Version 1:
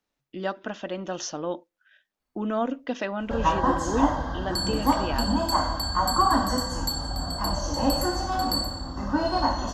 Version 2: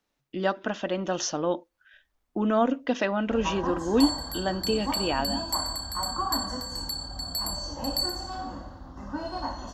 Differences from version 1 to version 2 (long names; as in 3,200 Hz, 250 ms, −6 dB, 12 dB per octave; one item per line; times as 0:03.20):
speech +3.5 dB
first sound −9.0 dB
second sound: entry −0.55 s